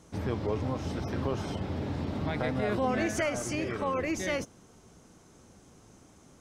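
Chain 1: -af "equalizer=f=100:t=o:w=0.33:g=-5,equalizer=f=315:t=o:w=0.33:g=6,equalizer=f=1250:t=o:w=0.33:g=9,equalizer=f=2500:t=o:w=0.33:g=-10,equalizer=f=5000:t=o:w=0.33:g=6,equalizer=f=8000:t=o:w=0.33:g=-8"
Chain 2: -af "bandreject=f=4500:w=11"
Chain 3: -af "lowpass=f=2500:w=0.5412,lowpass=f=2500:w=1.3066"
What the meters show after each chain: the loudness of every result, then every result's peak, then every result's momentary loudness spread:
-30.5 LUFS, -32.0 LUFS, -32.0 LUFS; -16.5 dBFS, -17.5 dBFS, -17.5 dBFS; 6 LU, 6 LU, 5 LU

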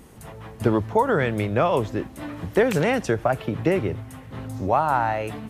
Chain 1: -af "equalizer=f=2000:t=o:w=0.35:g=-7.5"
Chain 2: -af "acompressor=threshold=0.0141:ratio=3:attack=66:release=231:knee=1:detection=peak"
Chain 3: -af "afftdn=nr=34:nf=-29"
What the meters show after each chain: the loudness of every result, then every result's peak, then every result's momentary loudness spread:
-23.5 LUFS, -34.5 LUFS, -23.5 LUFS; -7.0 dBFS, -12.5 dBFS, -7.0 dBFS; 15 LU, 7 LU, 15 LU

